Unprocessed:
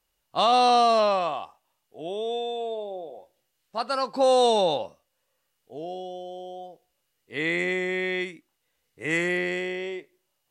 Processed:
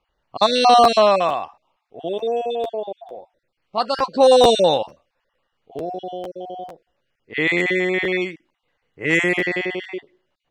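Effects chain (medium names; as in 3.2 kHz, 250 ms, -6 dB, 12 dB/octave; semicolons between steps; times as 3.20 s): random holes in the spectrogram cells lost 27%; level-controlled noise filter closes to 2.4 kHz, open at -19 dBFS; crackling interface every 0.45 s, samples 512, repeat, from 0.38 s; trim +8 dB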